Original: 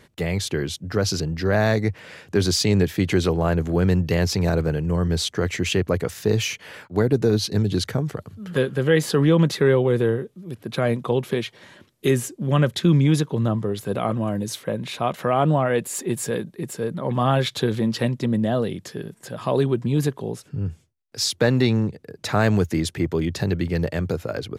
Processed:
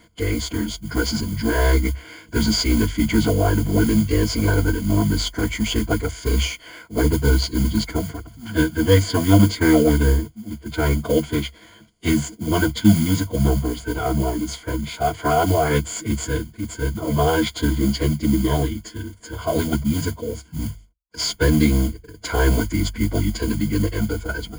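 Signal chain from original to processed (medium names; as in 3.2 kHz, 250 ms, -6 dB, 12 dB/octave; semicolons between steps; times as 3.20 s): CVSD coder 64 kbps; formant-preserving pitch shift -9 st; modulation noise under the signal 18 dB; rippled EQ curve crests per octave 1.8, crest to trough 15 dB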